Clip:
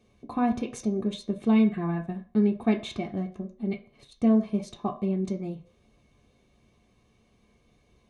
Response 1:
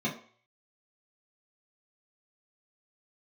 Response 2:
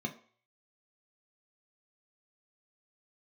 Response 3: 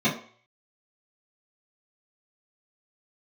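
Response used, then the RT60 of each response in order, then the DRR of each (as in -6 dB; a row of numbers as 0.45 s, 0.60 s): 2; 0.50 s, 0.50 s, 0.50 s; -6.5 dB, 2.5 dB, -13.5 dB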